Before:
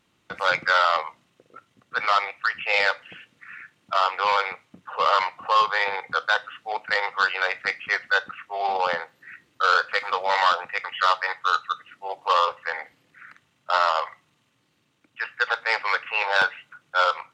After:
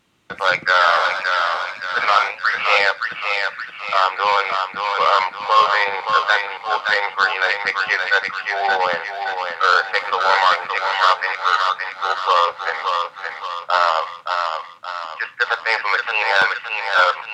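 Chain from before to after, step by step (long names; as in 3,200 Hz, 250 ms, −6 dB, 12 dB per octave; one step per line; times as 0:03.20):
feedback echo with a high-pass in the loop 571 ms, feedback 50%, high-pass 540 Hz, level −4 dB
0:00.64–0:02.78: delay with pitch and tempo change per echo 132 ms, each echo +1 semitone, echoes 2, each echo −6 dB
level +4.5 dB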